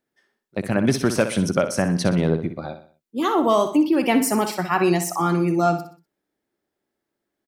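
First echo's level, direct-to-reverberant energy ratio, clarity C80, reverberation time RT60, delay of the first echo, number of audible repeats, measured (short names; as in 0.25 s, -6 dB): -10.0 dB, none, none, none, 62 ms, 4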